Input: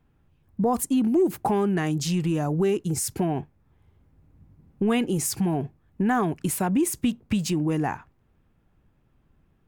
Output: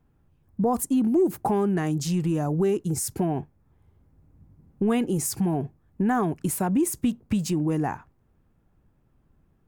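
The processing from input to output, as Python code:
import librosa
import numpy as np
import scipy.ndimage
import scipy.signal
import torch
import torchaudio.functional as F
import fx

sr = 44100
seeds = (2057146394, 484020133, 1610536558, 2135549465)

y = fx.peak_eq(x, sr, hz=2900.0, db=-6.0, octaves=1.7)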